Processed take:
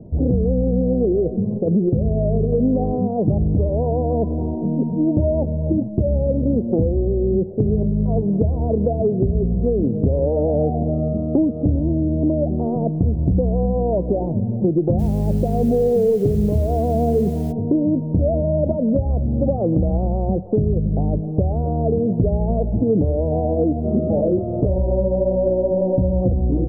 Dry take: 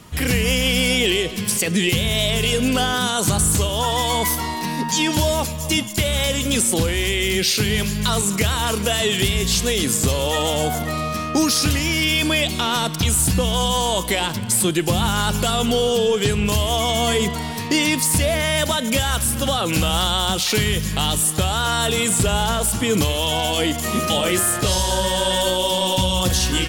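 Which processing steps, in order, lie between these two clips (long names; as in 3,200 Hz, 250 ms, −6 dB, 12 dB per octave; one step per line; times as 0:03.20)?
Butterworth low-pass 660 Hz 48 dB per octave
downward compressor 3 to 1, threshold −22 dBFS, peak gain reduction 6 dB
0:14.98–0:17.51: background noise white −57 dBFS
level +7 dB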